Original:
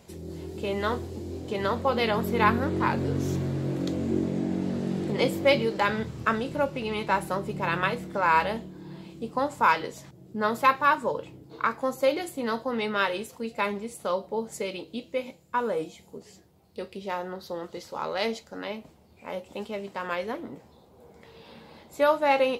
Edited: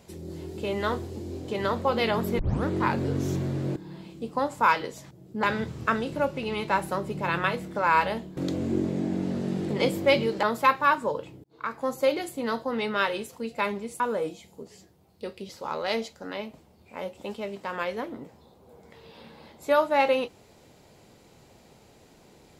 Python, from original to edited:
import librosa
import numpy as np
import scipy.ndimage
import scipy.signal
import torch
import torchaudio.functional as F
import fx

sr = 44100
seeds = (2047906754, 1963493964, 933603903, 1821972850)

y = fx.edit(x, sr, fx.tape_start(start_s=2.39, length_s=0.26),
    fx.swap(start_s=3.76, length_s=2.06, other_s=8.76, other_length_s=1.67),
    fx.fade_in_span(start_s=11.44, length_s=0.46),
    fx.cut(start_s=14.0, length_s=1.55),
    fx.cut(start_s=17.04, length_s=0.76), tone=tone)